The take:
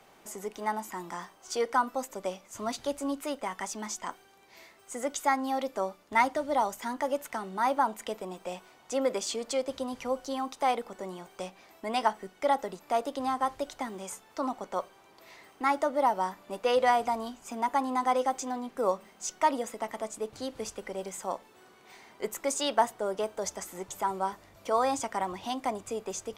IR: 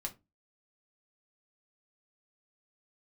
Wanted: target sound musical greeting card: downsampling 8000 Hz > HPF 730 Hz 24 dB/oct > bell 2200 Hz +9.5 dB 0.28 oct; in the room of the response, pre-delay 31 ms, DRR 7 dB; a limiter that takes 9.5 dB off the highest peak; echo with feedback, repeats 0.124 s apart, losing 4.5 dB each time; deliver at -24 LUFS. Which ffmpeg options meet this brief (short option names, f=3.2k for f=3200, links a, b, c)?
-filter_complex "[0:a]alimiter=limit=-20dB:level=0:latency=1,aecho=1:1:124|248|372|496|620|744|868|992|1116:0.596|0.357|0.214|0.129|0.0772|0.0463|0.0278|0.0167|0.01,asplit=2[a][b];[1:a]atrim=start_sample=2205,adelay=31[c];[b][c]afir=irnorm=-1:irlink=0,volume=-6dB[d];[a][d]amix=inputs=2:normalize=0,aresample=8000,aresample=44100,highpass=f=730:w=0.5412,highpass=f=730:w=1.3066,equalizer=f=2.2k:t=o:w=0.28:g=9.5,volume=10dB"